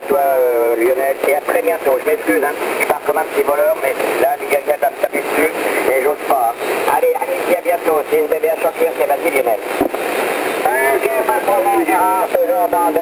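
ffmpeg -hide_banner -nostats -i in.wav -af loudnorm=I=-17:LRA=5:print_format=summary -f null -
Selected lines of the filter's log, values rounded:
Input Integrated:    -15.5 LUFS
Input True Peak:      -3.9 dBTP
Input LRA:             1.2 LU
Input Threshold:     -25.5 LUFS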